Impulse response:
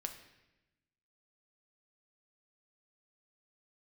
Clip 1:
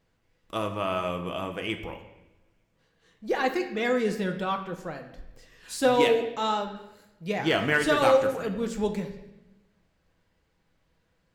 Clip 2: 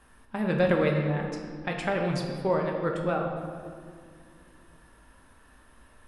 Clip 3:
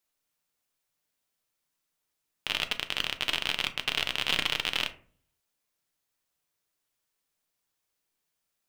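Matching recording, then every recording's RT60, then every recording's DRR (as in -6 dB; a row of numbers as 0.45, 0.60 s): 1; 0.95, 2.2, 0.50 s; 4.5, 1.0, 8.0 dB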